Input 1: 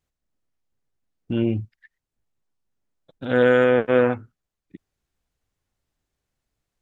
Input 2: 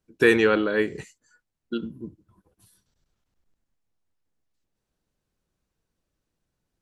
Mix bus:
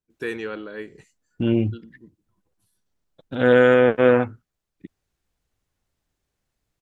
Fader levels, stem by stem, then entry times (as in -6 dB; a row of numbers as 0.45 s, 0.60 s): +2.0 dB, -11.5 dB; 0.10 s, 0.00 s